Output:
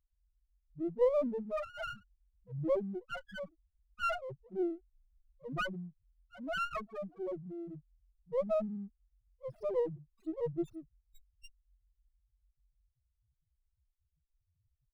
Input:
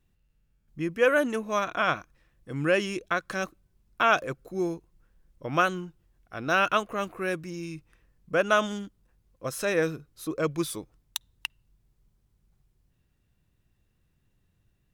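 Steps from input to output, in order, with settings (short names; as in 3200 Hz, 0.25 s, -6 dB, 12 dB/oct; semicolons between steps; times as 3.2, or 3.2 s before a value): loudest bins only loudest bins 1; running maximum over 9 samples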